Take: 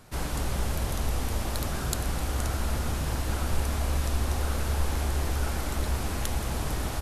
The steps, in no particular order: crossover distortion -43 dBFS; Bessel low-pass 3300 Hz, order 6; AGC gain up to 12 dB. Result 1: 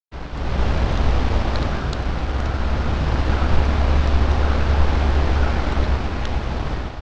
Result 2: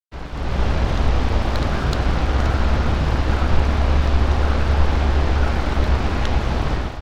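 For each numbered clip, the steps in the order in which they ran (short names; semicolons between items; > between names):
crossover distortion > AGC > Bessel low-pass; Bessel low-pass > crossover distortion > AGC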